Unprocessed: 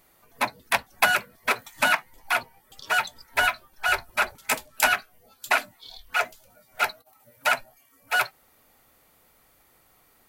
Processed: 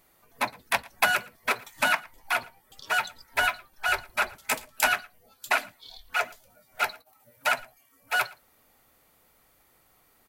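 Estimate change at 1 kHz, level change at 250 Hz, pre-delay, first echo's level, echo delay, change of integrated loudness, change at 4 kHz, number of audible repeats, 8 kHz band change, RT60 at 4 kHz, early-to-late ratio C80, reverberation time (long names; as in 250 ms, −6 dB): −2.5 dB, −2.5 dB, no reverb audible, −23.5 dB, 114 ms, −2.5 dB, −2.5 dB, 1, −2.5 dB, no reverb audible, no reverb audible, no reverb audible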